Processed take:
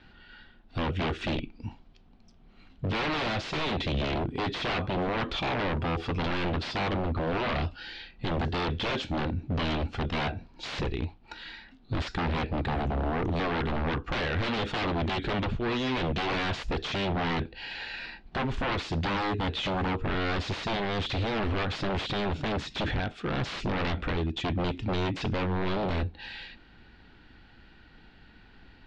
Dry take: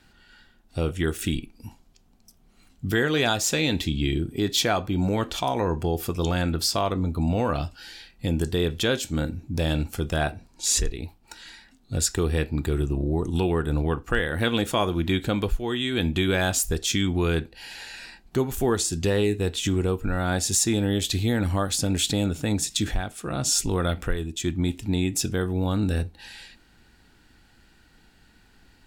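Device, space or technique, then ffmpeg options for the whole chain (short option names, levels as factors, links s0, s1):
synthesiser wavefolder: -af "aeval=exprs='0.0473*(abs(mod(val(0)/0.0473+3,4)-2)-1)':c=same,lowpass=f=3900:w=0.5412,lowpass=f=3900:w=1.3066,volume=1.41"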